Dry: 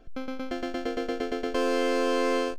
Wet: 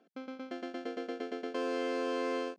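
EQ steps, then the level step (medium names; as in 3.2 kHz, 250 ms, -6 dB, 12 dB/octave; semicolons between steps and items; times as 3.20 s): brick-wall FIR high-pass 180 Hz; distance through air 59 m; -8.0 dB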